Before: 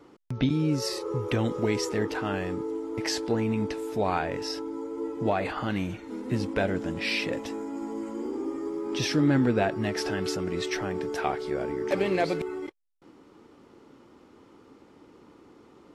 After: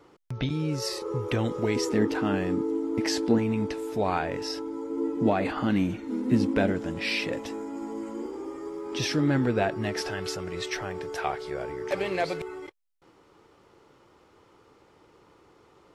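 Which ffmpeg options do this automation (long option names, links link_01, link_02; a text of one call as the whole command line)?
ffmpeg -i in.wav -af "asetnsamples=nb_out_samples=441:pad=0,asendcmd='1.02 equalizer g -1.5;1.76 equalizer g 10;3.38 equalizer g 0.5;4.9 equalizer g 9;6.72 equalizer g -1.5;8.26 equalizer g -10.5;8.95 equalizer g -3;10.01 equalizer g -13.5',equalizer=frequency=250:width_type=o:width=0.78:gain=-8" out.wav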